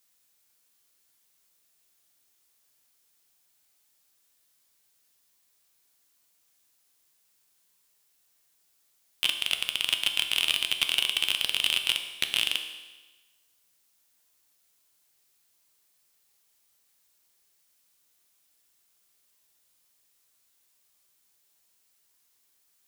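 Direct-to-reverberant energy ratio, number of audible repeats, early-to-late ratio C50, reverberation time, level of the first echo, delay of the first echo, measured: 5.5 dB, no echo, 8.5 dB, 1.2 s, no echo, no echo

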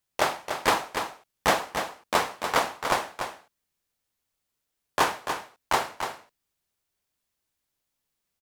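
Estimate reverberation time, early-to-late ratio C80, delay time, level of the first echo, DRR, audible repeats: no reverb, no reverb, 290 ms, -7.5 dB, no reverb, 1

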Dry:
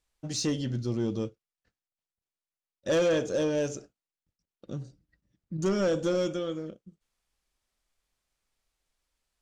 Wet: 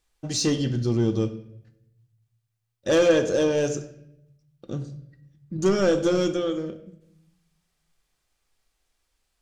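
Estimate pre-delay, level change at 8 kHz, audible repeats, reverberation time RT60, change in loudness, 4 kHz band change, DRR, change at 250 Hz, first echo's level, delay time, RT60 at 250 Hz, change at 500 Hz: 3 ms, +6.0 dB, no echo, 0.80 s, +6.0 dB, +6.0 dB, 8.0 dB, +6.0 dB, no echo, no echo, 1.1 s, +6.0 dB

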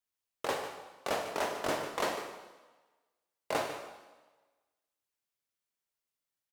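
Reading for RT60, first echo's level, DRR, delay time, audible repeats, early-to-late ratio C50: 1.3 s, -11.5 dB, 4.0 dB, 148 ms, 1, 6.0 dB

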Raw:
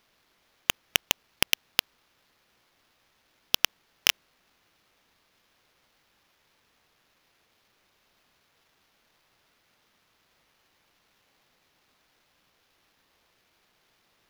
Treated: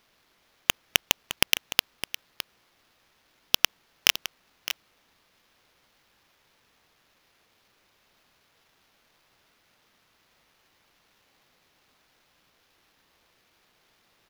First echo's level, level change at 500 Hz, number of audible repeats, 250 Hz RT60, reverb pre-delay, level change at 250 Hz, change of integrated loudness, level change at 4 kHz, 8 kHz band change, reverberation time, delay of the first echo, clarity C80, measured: -12.5 dB, +2.0 dB, 1, no reverb, no reverb, +2.0 dB, 0.0 dB, +2.0 dB, +2.0 dB, no reverb, 611 ms, no reverb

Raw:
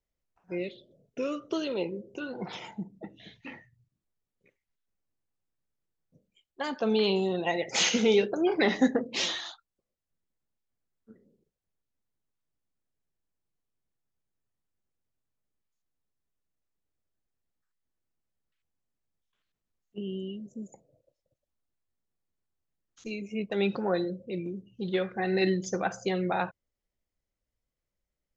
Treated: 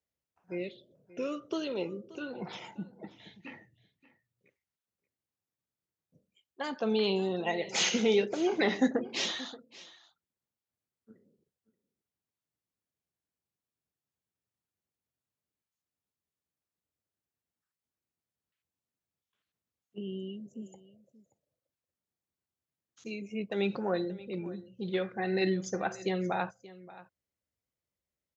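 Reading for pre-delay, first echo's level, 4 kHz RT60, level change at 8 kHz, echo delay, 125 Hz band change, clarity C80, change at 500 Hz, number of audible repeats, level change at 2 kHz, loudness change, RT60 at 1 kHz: no reverb, -18.5 dB, no reverb, no reading, 579 ms, -3.0 dB, no reverb, -3.0 dB, 1, -3.0 dB, -3.0 dB, no reverb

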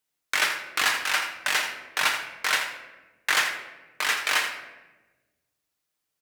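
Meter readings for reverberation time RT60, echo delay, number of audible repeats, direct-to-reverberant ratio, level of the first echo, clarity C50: 1.2 s, 83 ms, 1, 2.0 dB, -10.5 dB, 6.0 dB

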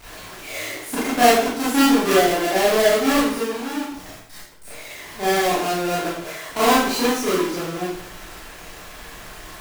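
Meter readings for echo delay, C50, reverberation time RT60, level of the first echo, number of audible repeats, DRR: no echo, 0.0 dB, 0.60 s, no echo, no echo, -10.0 dB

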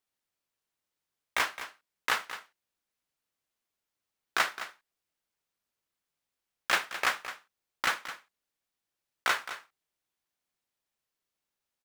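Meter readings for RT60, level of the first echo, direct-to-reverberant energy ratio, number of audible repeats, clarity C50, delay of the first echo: no reverb, -12.5 dB, no reverb, 1, no reverb, 214 ms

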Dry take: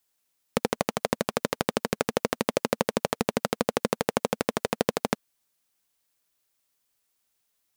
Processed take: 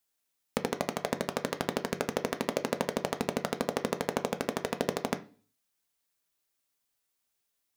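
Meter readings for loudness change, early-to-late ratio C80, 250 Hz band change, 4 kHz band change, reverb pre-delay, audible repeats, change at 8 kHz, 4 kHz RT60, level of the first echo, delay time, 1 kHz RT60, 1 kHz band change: -4.5 dB, 22.5 dB, -4.0 dB, -4.5 dB, 3 ms, no echo, -5.0 dB, 0.45 s, no echo, no echo, 0.40 s, -4.5 dB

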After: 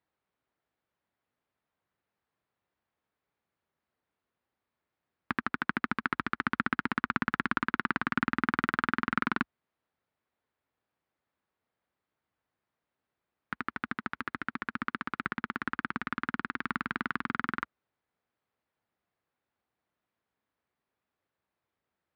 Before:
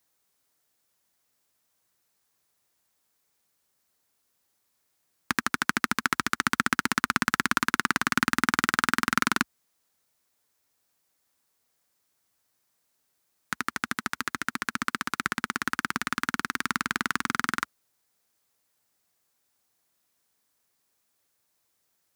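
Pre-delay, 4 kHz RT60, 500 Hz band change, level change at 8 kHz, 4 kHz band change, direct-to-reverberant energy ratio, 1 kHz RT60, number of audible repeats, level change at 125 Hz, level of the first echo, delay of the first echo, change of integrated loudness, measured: no reverb, no reverb, -3.0 dB, under -30 dB, -13.0 dB, no reverb, no reverb, no echo, -2.5 dB, no echo, no echo, -5.5 dB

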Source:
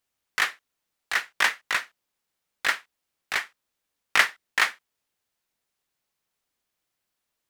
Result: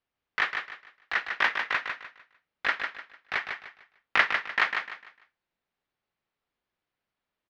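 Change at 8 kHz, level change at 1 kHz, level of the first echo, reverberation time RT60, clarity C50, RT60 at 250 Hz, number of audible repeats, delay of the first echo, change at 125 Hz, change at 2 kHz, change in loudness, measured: under -15 dB, -0.5 dB, -6.0 dB, no reverb, no reverb, no reverb, 3, 150 ms, no reading, -1.5 dB, -2.5 dB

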